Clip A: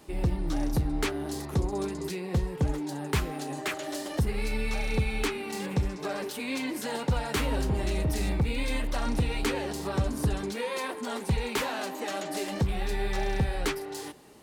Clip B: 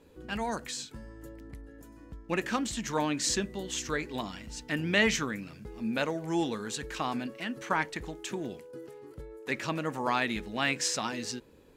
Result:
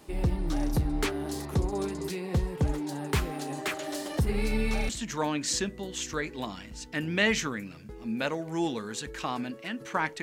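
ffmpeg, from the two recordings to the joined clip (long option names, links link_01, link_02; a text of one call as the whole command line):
ffmpeg -i cue0.wav -i cue1.wav -filter_complex "[0:a]asettb=1/sr,asplit=3[link_01][link_02][link_03];[link_01]atrim=end=4.294[link_04];[link_02]atrim=start=4.29:end=4.89,asetpts=PTS-STARTPTS,afade=type=in:duration=0.004:curve=qsin,afade=type=out:start_time=0.596:duration=0.004:curve=qsin,equalizer=frequency=200:width_type=o:width=2.4:gain=6[link_05];[link_03]atrim=start=4.886[link_06];[link_04][link_05]acrossfade=duration=0.004:curve1=hsin:curve2=qsin[link_07];[link_07][link_06]acrossfade=duration=0.004:curve1=qsin:curve2=hsin,apad=whole_dur=10.22,atrim=end=10.22,atrim=end=4.892[link_08];[1:a]atrim=start=2.648:end=7.98[link_09];[link_08][link_09]acrossfade=duration=0.004:curve1=hsin:curve2=hsin" out.wav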